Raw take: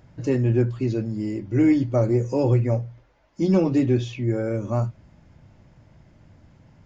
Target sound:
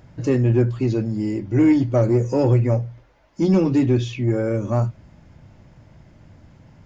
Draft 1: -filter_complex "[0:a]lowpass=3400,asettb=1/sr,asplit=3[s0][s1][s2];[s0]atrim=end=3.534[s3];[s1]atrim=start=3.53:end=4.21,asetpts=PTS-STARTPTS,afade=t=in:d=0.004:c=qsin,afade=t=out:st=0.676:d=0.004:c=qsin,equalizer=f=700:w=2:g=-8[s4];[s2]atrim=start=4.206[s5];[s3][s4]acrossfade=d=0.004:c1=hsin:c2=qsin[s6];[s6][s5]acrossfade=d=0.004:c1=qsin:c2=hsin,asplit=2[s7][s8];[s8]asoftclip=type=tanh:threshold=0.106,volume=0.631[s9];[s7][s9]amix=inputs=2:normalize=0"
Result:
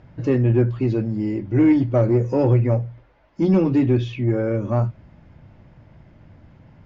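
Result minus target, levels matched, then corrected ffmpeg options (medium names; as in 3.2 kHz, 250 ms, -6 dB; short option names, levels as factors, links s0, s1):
4 kHz band -3.5 dB
-filter_complex "[0:a]asettb=1/sr,asplit=3[s0][s1][s2];[s0]atrim=end=3.534[s3];[s1]atrim=start=3.53:end=4.21,asetpts=PTS-STARTPTS,afade=t=in:d=0.004:c=qsin,afade=t=out:st=0.676:d=0.004:c=qsin,equalizer=f=700:w=2:g=-8[s4];[s2]atrim=start=4.206[s5];[s3][s4]acrossfade=d=0.004:c1=hsin:c2=qsin[s6];[s6][s5]acrossfade=d=0.004:c1=qsin:c2=hsin,asplit=2[s7][s8];[s8]asoftclip=type=tanh:threshold=0.106,volume=0.631[s9];[s7][s9]amix=inputs=2:normalize=0"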